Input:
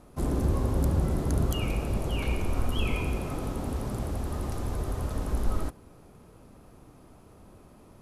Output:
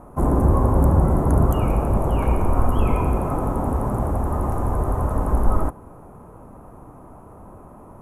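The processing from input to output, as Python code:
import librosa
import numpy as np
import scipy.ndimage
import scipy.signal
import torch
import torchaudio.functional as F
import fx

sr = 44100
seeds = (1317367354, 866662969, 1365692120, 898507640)

y = fx.curve_eq(x, sr, hz=(420.0, 1000.0, 4500.0, 6600.0, 11000.0), db=(0, 7, -26, -14, -6))
y = y * librosa.db_to_amplitude(9.0)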